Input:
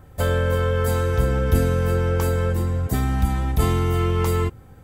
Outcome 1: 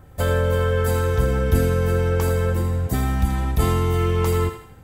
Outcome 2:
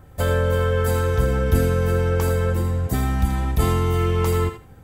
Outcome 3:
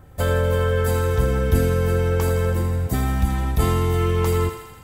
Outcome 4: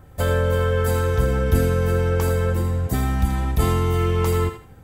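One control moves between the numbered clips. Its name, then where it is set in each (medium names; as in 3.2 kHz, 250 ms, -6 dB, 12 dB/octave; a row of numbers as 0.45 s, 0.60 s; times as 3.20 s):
thinning echo, feedback: 46%, 19%, 70%, 29%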